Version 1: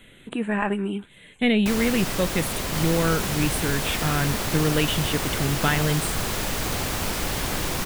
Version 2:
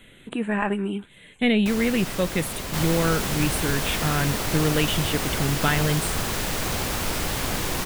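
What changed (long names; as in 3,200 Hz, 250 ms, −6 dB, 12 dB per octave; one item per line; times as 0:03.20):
first sound −4.0 dB
second sound +4.0 dB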